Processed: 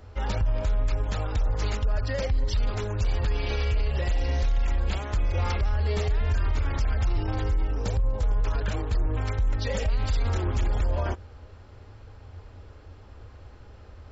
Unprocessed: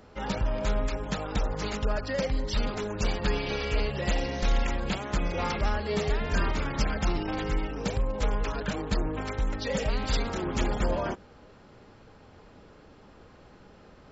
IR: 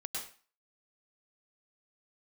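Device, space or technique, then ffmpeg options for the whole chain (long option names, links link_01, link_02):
car stereo with a boomy subwoofer: -filter_complex "[0:a]lowshelf=frequency=120:width_type=q:width=3:gain=9.5,alimiter=limit=-18dB:level=0:latency=1:release=37,asettb=1/sr,asplit=3[link_01][link_02][link_03];[link_01]atrim=end=7.214[link_04];[link_02]atrim=start=7.21:end=8.47,asetpts=PTS-STARTPTS,afade=type=in:duration=0.004:curve=qsin,afade=type=out:start_time=1.256:duration=0.004:curve=qsin,equalizer=frequency=2500:width_type=o:width=1.1:gain=-5[link_05];[link_03]atrim=start=8.466[link_06];[link_04][link_05]acrossfade=duration=0.004:curve1=hsin:curve2=qsin[link_07];[link_07][link_06]acrossfade=duration=0.004:curve1=qsin:curve2=hsin"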